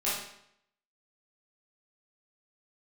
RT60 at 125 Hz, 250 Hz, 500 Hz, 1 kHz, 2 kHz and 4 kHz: 0.75, 0.70, 0.70, 0.70, 0.70, 0.65 seconds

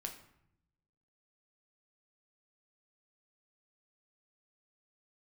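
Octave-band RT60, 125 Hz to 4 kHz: 1.3, 1.1, 0.75, 0.75, 0.65, 0.50 seconds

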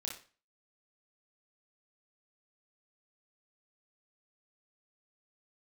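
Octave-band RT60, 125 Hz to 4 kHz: 0.40, 0.40, 0.35, 0.40, 0.35, 0.35 seconds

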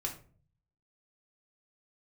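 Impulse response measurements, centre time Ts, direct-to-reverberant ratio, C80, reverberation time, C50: 16 ms, −0.5 dB, 14.5 dB, 0.45 s, 10.0 dB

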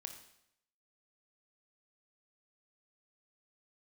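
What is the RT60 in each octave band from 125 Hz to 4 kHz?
0.80, 0.75, 0.75, 0.75, 0.75, 0.75 seconds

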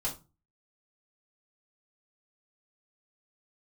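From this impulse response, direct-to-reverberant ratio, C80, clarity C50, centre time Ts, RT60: −7.0 dB, 18.5 dB, 12.0 dB, 17 ms, 0.30 s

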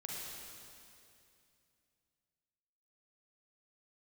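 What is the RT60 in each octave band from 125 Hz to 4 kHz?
3.2, 3.0, 2.7, 2.5, 2.5, 2.5 seconds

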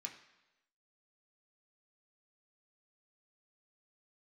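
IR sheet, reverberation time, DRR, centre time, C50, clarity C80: 1.0 s, 0.5 dB, 18 ms, 9.5 dB, 12.0 dB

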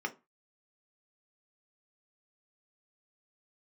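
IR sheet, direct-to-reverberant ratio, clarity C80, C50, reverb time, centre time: 3.0 dB, 26.0 dB, 18.5 dB, 0.25 s, 6 ms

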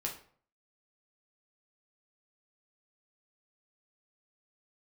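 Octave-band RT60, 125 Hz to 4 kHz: 0.60, 0.55, 0.55, 0.50, 0.40, 0.35 seconds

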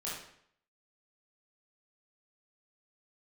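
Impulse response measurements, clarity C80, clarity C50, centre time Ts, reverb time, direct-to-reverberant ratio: 5.5 dB, 0.5 dB, 56 ms, 0.65 s, −7.5 dB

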